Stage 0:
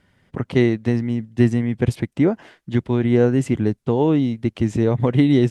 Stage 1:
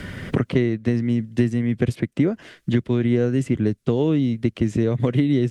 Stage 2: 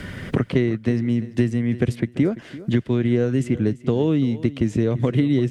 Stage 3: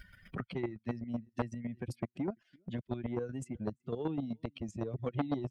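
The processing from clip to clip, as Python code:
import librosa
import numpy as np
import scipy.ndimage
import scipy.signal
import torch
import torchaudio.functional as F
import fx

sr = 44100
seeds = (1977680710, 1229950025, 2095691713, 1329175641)

y1 = fx.peak_eq(x, sr, hz=850.0, db=-9.5, octaves=0.59)
y1 = fx.band_squash(y1, sr, depth_pct=100)
y1 = F.gain(torch.from_numpy(y1), -2.5).numpy()
y2 = fx.echo_feedback(y1, sr, ms=341, feedback_pct=20, wet_db=-17)
y3 = fx.bin_expand(y2, sr, power=2.0)
y3 = fx.chopper(y3, sr, hz=7.9, depth_pct=65, duty_pct=20)
y3 = fx.transformer_sat(y3, sr, knee_hz=790.0)
y3 = F.gain(torch.from_numpy(y3), -5.0).numpy()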